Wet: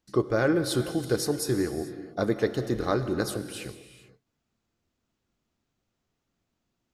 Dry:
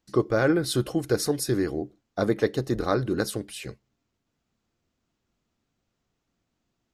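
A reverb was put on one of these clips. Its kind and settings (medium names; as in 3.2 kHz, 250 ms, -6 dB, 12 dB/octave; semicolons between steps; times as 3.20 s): gated-style reverb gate 470 ms flat, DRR 9.5 dB; trim -2 dB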